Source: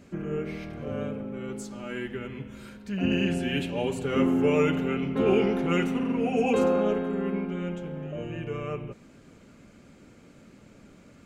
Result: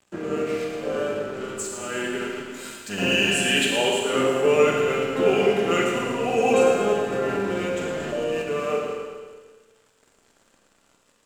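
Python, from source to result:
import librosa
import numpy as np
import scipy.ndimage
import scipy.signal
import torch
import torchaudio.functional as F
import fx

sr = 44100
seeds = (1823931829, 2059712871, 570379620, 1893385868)

p1 = fx.octave_divider(x, sr, octaves=1, level_db=-1.0)
p2 = scipy.signal.sosfilt(scipy.signal.butter(2, 360.0, 'highpass', fs=sr, output='sos'), p1)
p3 = fx.rider(p2, sr, range_db=4, speed_s=0.5)
p4 = p2 + (p3 * librosa.db_to_amplitude(-2.0))
p5 = fx.high_shelf(p4, sr, hz=2200.0, db=8.5, at=(2.54, 3.9))
p6 = np.sign(p5) * np.maximum(np.abs(p5) - 10.0 ** (-45.0 / 20.0), 0.0)
p7 = fx.peak_eq(p6, sr, hz=7600.0, db=8.5, octaves=0.31)
p8 = fx.notch(p7, sr, hz=2200.0, q=16.0)
p9 = p8 + fx.echo_feedback(p8, sr, ms=113, feedback_pct=56, wet_db=-9, dry=0)
p10 = fx.rev_schroeder(p9, sr, rt60_s=1.3, comb_ms=32, drr_db=1.0)
p11 = fx.env_flatten(p10, sr, amount_pct=50, at=(7.12, 8.42))
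y = p11 * librosa.db_to_amplitude(1.0)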